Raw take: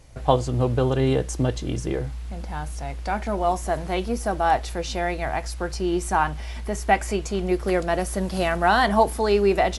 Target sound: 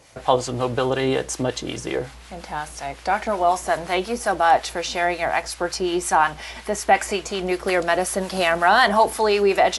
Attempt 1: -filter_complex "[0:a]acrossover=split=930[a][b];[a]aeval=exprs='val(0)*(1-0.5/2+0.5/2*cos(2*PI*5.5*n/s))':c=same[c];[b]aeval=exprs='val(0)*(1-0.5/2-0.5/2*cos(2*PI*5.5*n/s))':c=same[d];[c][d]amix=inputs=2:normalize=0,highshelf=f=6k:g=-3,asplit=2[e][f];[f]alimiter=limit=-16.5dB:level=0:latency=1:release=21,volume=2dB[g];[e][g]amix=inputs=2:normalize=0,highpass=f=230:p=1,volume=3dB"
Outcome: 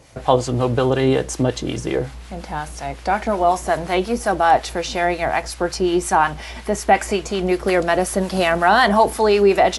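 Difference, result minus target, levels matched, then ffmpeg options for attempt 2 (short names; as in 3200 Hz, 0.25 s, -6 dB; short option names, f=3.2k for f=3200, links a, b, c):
250 Hz band +3.0 dB
-filter_complex "[0:a]acrossover=split=930[a][b];[a]aeval=exprs='val(0)*(1-0.5/2+0.5/2*cos(2*PI*5.5*n/s))':c=same[c];[b]aeval=exprs='val(0)*(1-0.5/2-0.5/2*cos(2*PI*5.5*n/s))':c=same[d];[c][d]amix=inputs=2:normalize=0,highshelf=f=6k:g=-3,asplit=2[e][f];[f]alimiter=limit=-16.5dB:level=0:latency=1:release=21,volume=2dB[g];[e][g]amix=inputs=2:normalize=0,highpass=f=640:p=1,volume=3dB"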